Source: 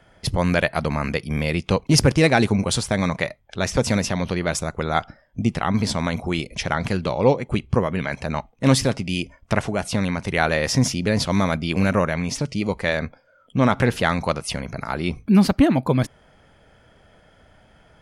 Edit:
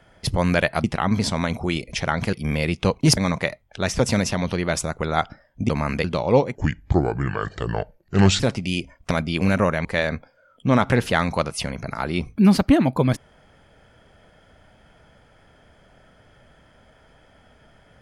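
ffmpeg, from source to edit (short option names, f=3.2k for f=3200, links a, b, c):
-filter_complex "[0:a]asplit=10[a][b][c][d][e][f][g][h][i][j];[a]atrim=end=0.842[k];[b]atrim=start=5.468:end=6.962[l];[c]atrim=start=1.188:end=2.032[m];[d]atrim=start=2.948:end=5.472[n];[e]atrim=start=0.838:end=1.192[o];[f]atrim=start=6.958:end=7.474[p];[g]atrim=start=7.47:end=8.82,asetpts=PTS-STARTPTS,asetrate=32193,aresample=44100[q];[h]atrim=start=8.816:end=9.532[r];[i]atrim=start=11.458:end=12.202[s];[j]atrim=start=12.748[t];[k][l]acrossfade=d=0.004:c1=hsin:c2=hsin[u];[u][m]acrossfade=d=0.004:c1=hsin:c2=hsin[v];[v][n]acrossfade=d=0.004:c1=hsin:c2=hsin[w];[w][o]acrossfade=d=0.004:c1=hsin:c2=hsin[x];[x][p]acrossfade=d=0.004:c1=hsin:c2=hsin[y];[y][q]acrossfade=d=0.004:c1=hsin:c2=hsin[z];[z][r]acrossfade=d=0.004:c1=hsin:c2=hsin[aa];[aa][s]acrossfade=d=0.004:c1=hsin:c2=hsin[ab];[ab][t]acrossfade=d=0.004:c1=hsin:c2=hsin"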